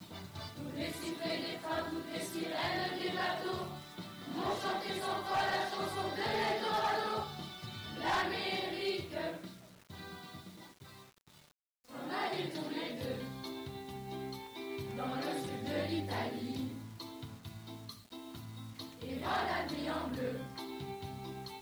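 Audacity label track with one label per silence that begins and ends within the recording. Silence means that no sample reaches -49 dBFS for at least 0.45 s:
11.040000	11.890000	silence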